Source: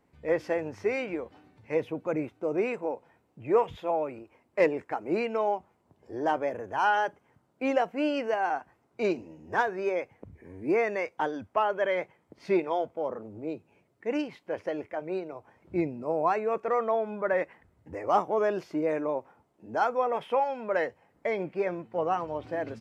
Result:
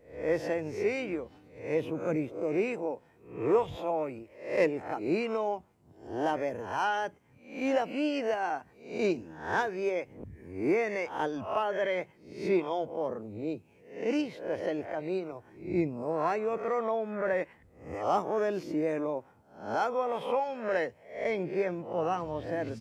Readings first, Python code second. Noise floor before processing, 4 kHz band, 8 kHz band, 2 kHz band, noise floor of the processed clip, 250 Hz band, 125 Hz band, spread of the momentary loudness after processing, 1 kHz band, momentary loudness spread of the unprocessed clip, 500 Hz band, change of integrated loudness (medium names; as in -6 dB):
-70 dBFS, +0.5 dB, no reading, -2.0 dB, -61 dBFS, 0.0 dB, +2.0 dB, 10 LU, -3.5 dB, 11 LU, -1.5 dB, -2.0 dB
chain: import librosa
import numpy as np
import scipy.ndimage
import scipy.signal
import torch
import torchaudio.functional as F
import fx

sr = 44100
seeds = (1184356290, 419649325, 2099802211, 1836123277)

p1 = fx.spec_swells(x, sr, rise_s=0.48)
p2 = fx.peak_eq(p1, sr, hz=1100.0, db=-7.5, octaves=3.0)
p3 = fx.rider(p2, sr, range_db=3, speed_s=0.5)
p4 = p2 + (p3 * 10.0 ** (-2.0 / 20.0))
y = p4 * 10.0 ** (-3.0 / 20.0)